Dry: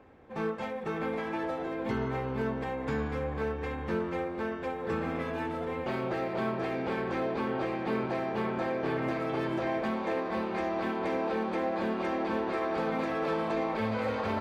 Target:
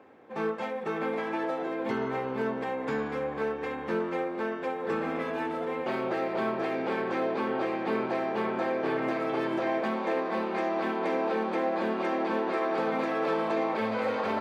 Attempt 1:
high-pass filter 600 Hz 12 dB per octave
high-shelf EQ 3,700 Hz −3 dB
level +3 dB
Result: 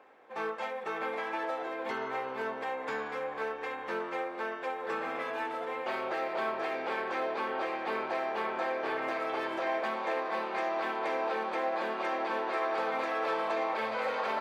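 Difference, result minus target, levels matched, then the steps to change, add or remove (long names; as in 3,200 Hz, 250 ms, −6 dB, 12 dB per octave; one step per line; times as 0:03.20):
250 Hz band −7.5 dB
change: high-pass filter 230 Hz 12 dB per octave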